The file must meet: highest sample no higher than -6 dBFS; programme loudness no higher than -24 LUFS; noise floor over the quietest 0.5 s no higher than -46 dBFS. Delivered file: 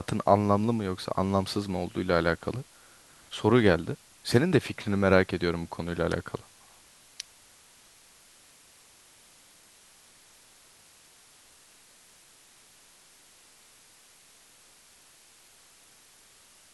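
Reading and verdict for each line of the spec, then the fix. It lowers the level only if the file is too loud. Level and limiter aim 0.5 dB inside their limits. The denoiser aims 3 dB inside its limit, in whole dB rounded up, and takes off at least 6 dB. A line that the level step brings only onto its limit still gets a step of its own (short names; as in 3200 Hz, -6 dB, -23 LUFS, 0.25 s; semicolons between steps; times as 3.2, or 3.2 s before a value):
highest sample -4.0 dBFS: fail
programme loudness -27.0 LUFS: OK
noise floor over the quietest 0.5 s -57 dBFS: OK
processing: limiter -6.5 dBFS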